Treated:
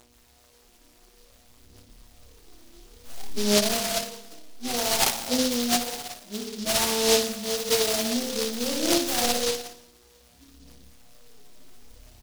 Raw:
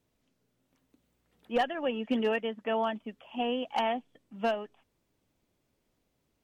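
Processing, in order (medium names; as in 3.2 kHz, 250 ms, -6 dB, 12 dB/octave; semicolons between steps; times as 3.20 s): reverse the whole clip; recorder AGC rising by 9 dB/s; time stretch by phase-locked vocoder 1.9×; bass shelf 220 Hz +10.5 dB; flutter echo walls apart 10 m, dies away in 0.88 s; mains buzz 120 Hz, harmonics 16, -64 dBFS -1 dB/octave; peaking EQ 140 Hz -11 dB 0.76 oct; doubling 29 ms -5 dB; speakerphone echo 190 ms, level -13 dB; compression 3:1, threshold -25 dBFS, peak gain reduction 6.5 dB; phaser 0.56 Hz, delay 3.3 ms, feedback 58%; delay time shaken by noise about 4.4 kHz, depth 0.24 ms; trim +2.5 dB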